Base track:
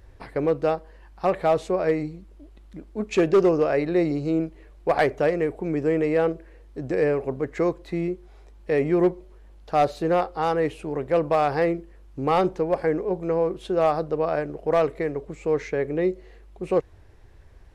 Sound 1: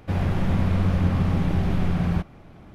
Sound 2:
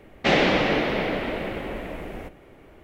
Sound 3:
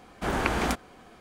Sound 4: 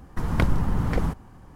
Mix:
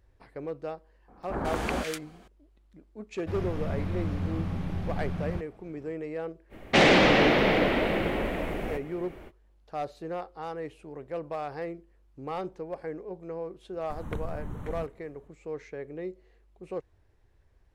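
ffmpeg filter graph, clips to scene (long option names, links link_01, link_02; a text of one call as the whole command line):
ffmpeg -i bed.wav -i cue0.wav -i cue1.wav -i cue2.wav -i cue3.wav -filter_complex "[0:a]volume=-13.5dB[link_01];[3:a]acrossover=split=1500[link_02][link_03];[link_03]adelay=150[link_04];[link_02][link_04]amix=inputs=2:normalize=0[link_05];[2:a]aeval=exprs='0.531*sin(PI/2*2.24*val(0)/0.531)':channel_layout=same[link_06];[4:a]asuperstop=centerf=4900:order=4:qfactor=2.9[link_07];[link_05]atrim=end=1.2,asetpts=PTS-STARTPTS,volume=-3dB,afade=type=in:duration=0.004:curve=hsin,afade=type=out:start_time=1.196:duration=0.004:curve=hsin,adelay=1080[link_08];[1:a]atrim=end=2.74,asetpts=PTS-STARTPTS,volume=-10dB,afade=type=in:duration=0.004:curve=hsin,afade=type=out:start_time=2.736:duration=0.004:curve=hsin,adelay=3190[link_09];[link_06]atrim=end=2.83,asetpts=PTS-STARTPTS,volume=-8dB,afade=type=in:duration=0.05,afade=type=out:start_time=2.78:duration=0.05,adelay=6490[link_10];[link_07]atrim=end=1.55,asetpts=PTS-STARTPTS,volume=-14dB,afade=type=in:duration=0.004:curve=hsin,afade=type=out:start_time=1.546:duration=0.004:curve=hsin,adelay=13730[link_11];[link_01][link_08][link_09][link_10][link_11]amix=inputs=5:normalize=0" out.wav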